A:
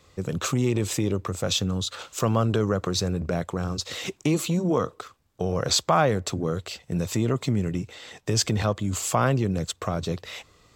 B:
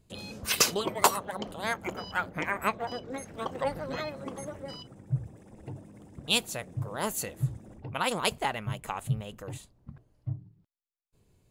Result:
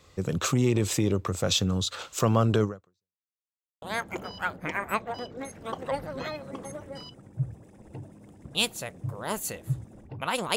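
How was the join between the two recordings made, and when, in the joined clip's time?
A
2.64–3.24 fade out exponential
3.24–3.82 mute
3.82 switch to B from 1.55 s

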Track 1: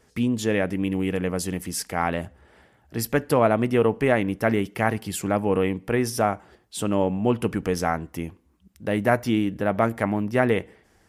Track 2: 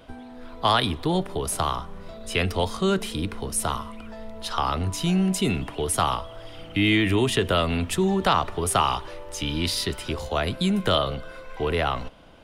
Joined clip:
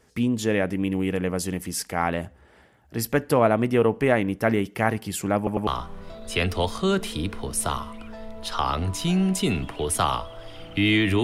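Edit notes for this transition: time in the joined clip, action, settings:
track 1
5.37 stutter in place 0.10 s, 3 plays
5.67 switch to track 2 from 1.66 s

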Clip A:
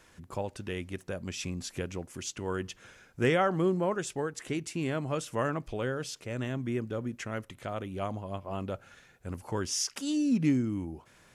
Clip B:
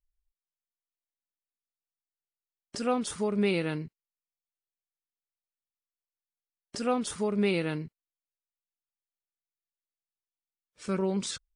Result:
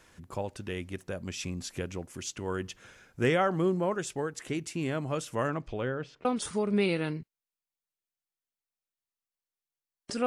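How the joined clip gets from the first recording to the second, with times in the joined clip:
clip A
5.47–6.25 LPF 9300 Hz -> 1400 Hz
6.25 switch to clip B from 2.9 s

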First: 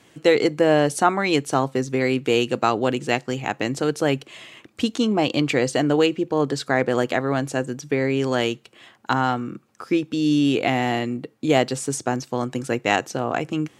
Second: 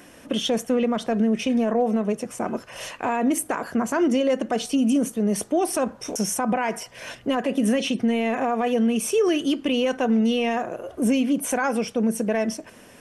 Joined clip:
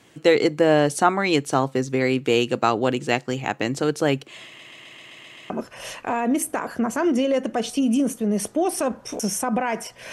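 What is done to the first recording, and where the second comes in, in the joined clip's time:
first
4.46 stutter in place 0.13 s, 8 plays
5.5 switch to second from 2.46 s

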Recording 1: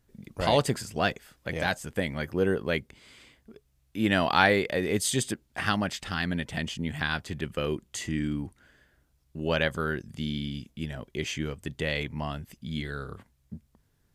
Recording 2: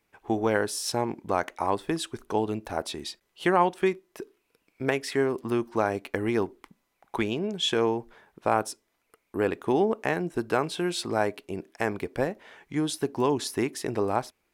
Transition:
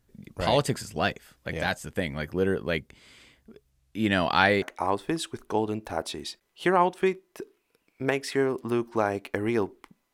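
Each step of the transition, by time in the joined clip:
recording 1
3.7–4.62 LPF 12000 Hz 12 dB/oct
4.62 switch to recording 2 from 1.42 s

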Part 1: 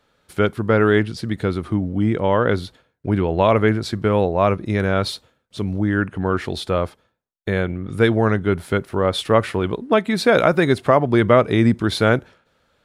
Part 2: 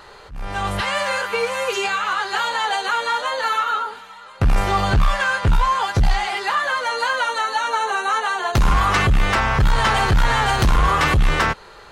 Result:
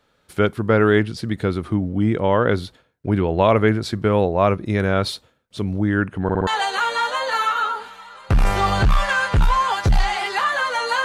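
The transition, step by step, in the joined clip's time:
part 1
6.23 stutter in place 0.06 s, 4 plays
6.47 switch to part 2 from 2.58 s

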